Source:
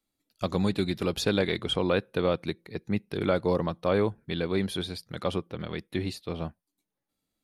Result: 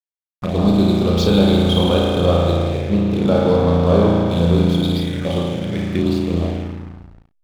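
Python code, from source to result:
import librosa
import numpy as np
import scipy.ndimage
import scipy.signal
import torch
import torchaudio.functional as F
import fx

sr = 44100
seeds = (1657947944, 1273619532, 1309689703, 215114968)

p1 = fx.rev_spring(x, sr, rt60_s=2.8, pass_ms=(35,), chirp_ms=30, drr_db=-5.5)
p2 = fx.env_phaser(p1, sr, low_hz=400.0, high_hz=1900.0, full_db=-20.5)
p3 = fx.backlash(p2, sr, play_db=-34.5)
p4 = p3 + fx.room_early_taps(p3, sr, ms=(34, 57), db=(-8.0, -14.0), dry=0)
y = F.gain(torch.from_numpy(p4), 7.5).numpy()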